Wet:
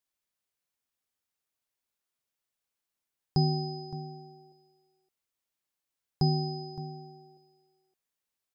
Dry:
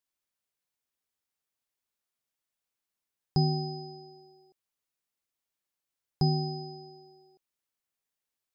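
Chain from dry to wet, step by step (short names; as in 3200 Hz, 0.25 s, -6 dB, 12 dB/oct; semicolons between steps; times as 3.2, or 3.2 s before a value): echo 0.566 s -15 dB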